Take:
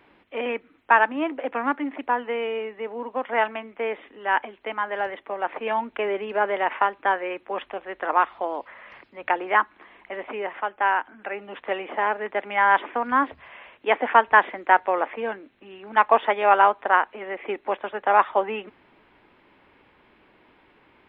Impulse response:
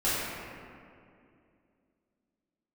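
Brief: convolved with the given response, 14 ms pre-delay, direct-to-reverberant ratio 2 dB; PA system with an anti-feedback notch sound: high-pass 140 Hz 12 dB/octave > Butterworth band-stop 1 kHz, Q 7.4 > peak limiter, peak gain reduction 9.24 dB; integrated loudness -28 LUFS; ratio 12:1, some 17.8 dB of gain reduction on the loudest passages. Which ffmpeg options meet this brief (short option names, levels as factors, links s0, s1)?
-filter_complex "[0:a]acompressor=threshold=0.0355:ratio=12,asplit=2[s0][s1];[1:a]atrim=start_sample=2205,adelay=14[s2];[s1][s2]afir=irnorm=-1:irlink=0,volume=0.188[s3];[s0][s3]amix=inputs=2:normalize=0,highpass=140,asuperstop=centerf=1000:order=8:qfactor=7.4,volume=2.51,alimiter=limit=0.126:level=0:latency=1"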